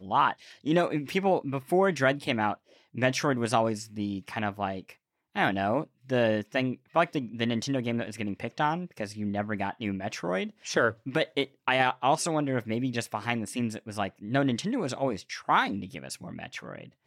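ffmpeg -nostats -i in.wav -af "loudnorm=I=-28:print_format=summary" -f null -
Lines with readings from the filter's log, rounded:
Input Integrated:    -29.0 LUFS
Input True Peak:     -10.3 dBTP
Input LRA:             3.1 LU
Input Threshold:     -39.4 LUFS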